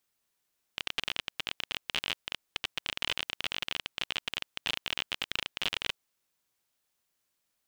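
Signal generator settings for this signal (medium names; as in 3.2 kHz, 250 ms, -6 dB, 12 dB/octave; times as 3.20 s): random clicks 32 per s -14 dBFS 5.15 s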